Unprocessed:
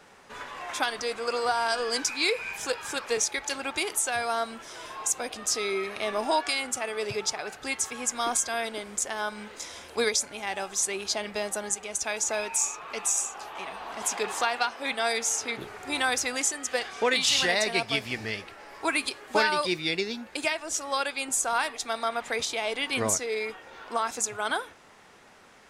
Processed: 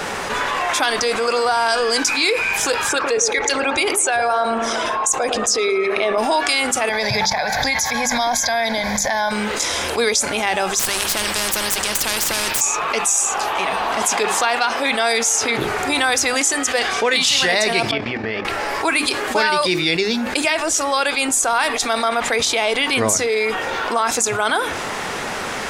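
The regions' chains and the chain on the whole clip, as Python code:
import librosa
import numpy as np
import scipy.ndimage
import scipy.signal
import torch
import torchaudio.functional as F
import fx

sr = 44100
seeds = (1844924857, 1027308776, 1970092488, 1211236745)

y = fx.chain(x, sr, fx.envelope_sharpen(power=1.5),
    fx.echo_wet_lowpass(ms=110, feedback_pct=49, hz=1400.0, wet_db=-7.5), at=(2.89, 6.18))
y = fx.chain(y, sr, fx.fixed_phaser(hz=1900.0, stages=8),
    fx.pre_swell(db_per_s=45.0), at=(6.89, 9.31))
y = fx.chain(y, sr, fx.ripple_eq(per_octave=1.3, db=6),
    fx.tube_stage(drive_db=18.0, bias=0.6),
    fx.spectral_comp(ratio=4.0), at=(10.79, 12.61))
y = fx.chain(y, sr, fx.highpass(hz=370.0, slope=6),
    fx.level_steps(step_db=14),
    fx.spacing_loss(db_at_10k=39), at=(17.91, 18.45))
y = fx.hum_notches(y, sr, base_hz=50, count=7)
y = fx.env_flatten(y, sr, amount_pct=70)
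y = y * 10.0 ** (4.5 / 20.0)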